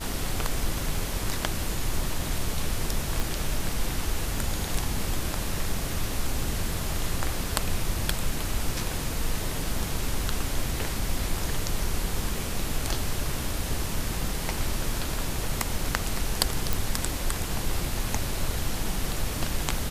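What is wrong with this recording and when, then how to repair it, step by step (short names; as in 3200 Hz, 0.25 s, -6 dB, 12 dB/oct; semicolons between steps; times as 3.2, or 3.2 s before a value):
3.2 pop
16.73 pop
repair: de-click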